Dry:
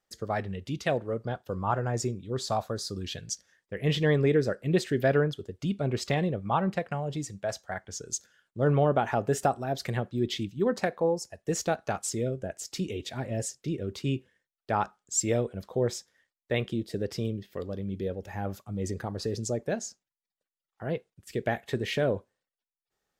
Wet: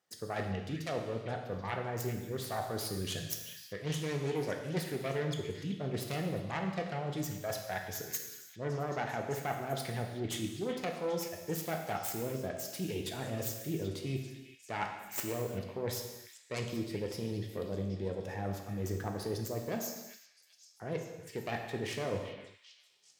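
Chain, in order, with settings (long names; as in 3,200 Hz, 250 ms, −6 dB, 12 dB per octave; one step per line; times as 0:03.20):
phase distortion by the signal itself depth 0.28 ms
high-pass filter 110 Hz
reversed playback
downward compressor, threshold −34 dBFS, peak gain reduction 14 dB
reversed playback
echo through a band-pass that steps 391 ms, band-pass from 2,500 Hz, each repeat 0.7 octaves, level −9 dB
reverb whose tail is shaped and stops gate 400 ms falling, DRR 2.5 dB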